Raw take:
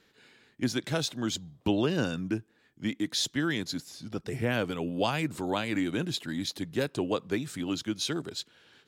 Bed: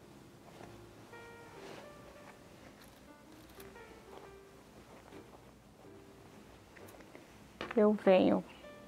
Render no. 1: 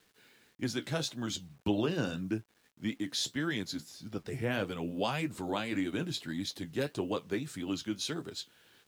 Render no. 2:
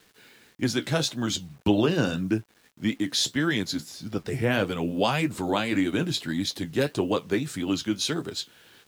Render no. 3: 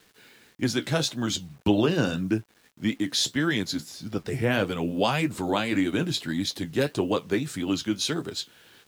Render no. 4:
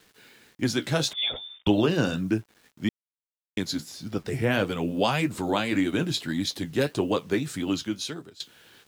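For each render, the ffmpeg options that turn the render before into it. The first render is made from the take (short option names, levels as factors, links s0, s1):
-af "flanger=delay=8.5:depth=7.2:regen=-50:speed=1.7:shape=triangular,acrusher=bits=10:mix=0:aa=0.000001"
-af "volume=2.66"
-af anull
-filter_complex "[0:a]asettb=1/sr,asplit=3[s0][s1][s2];[s0]atrim=end=1.134[s3];[s1]atrim=start=1.13:end=1.67,asetpts=PTS-STARTPTS,afade=t=in:d=0.004:c=qsin,afade=t=out:st=0.536:d=0.004:c=qsin,lowpass=f=3100:t=q:w=0.5098,lowpass=f=3100:t=q:w=0.6013,lowpass=f=3100:t=q:w=0.9,lowpass=f=3100:t=q:w=2.563,afreqshift=-3700[s4];[s2]atrim=start=1.666[s5];[s3][s4]acrossfade=d=0.004:c1=hsin:c2=qsin[s6];[s6][s5]acrossfade=d=0.004:c1=qsin:c2=hsin,asplit=4[s7][s8][s9][s10];[s7]atrim=end=2.89,asetpts=PTS-STARTPTS,afade=t=out:st=2.886:d=0.004:c=hsin[s11];[s8]atrim=start=2.89:end=3.57,asetpts=PTS-STARTPTS,volume=0[s12];[s9]atrim=start=3.57:end=8.4,asetpts=PTS-STARTPTS,afade=t=in:d=0.004:c=hsin,afade=t=out:st=4.1:d=0.73:silence=0.0891251[s13];[s10]atrim=start=8.4,asetpts=PTS-STARTPTS,afade=t=in:d=0.004:c=hsin:silence=0.0891251[s14];[s11][s12][s13][s14]concat=n=4:v=0:a=1"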